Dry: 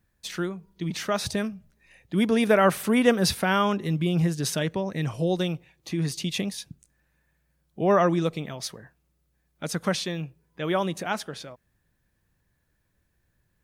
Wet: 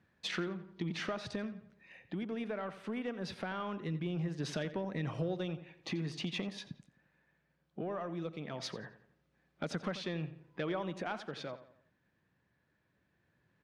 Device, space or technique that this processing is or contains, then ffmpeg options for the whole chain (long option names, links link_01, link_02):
AM radio: -filter_complex "[0:a]highpass=140,lowpass=3300,acompressor=threshold=-37dB:ratio=6,asoftclip=type=tanh:threshold=-27.5dB,tremolo=f=0.2:d=0.4,asettb=1/sr,asplit=3[link_01][link_02][link_03];[link_01]atrim=end=6.114[link_04];[link_02]atrim=start=6.11:end=6.7,asetpts=PTS-STARTPTS,afade=type=in:duration=0.004:curve=qsin,afade=type=out:start_time=0.586:duration=0.004:curve=qsin,equalizer=frequency=1000:width_type=o:width=1.7:gain=5.5[link_05];[link_03]atrim=start=6.696[link_06];[link_04][link_05]acrossfade=duration=0.004:curve1=hsin:curve2=qsin[link_07];[link_07][link_06]acrossfade=duration=0.004:curve1=qsin:curve2=hsin,asplit=2[link_08][link_09];[link_09]adelay=87,lowpass=frequency=3900:poles=1,volume=-13dB,asplit=2[link_10][link_11];[link_11]adelay=87,lowpass=frequency=3900:poles=1,volume=0.43,asplit=2[link_12][link_13];[link_13]adelay=87,lowpass=frequency=3900:poles=1,volume=0.43,asplit=2[link_14][link_15];[link_15]adelay=87,lowpass=frequency=3900:poles=1,volume=0.43[link_16];[link_08][link_10][link_12][link_14][link_16]amix=inputs=5:normalize=0,volume=4dB"